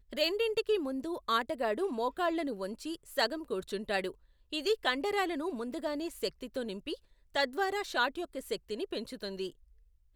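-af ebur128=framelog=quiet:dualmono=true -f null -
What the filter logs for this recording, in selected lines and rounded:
Integrated loudness:
  I:         -31.0 LUFS
  Threshold: -41.2 LUFS
Loudness range:
  LRA:         2.5 LU
  Threshold: -51.3 LUFS
  LRA low:   -32.4 LUFS
  LRA high:  -29.9 LUFS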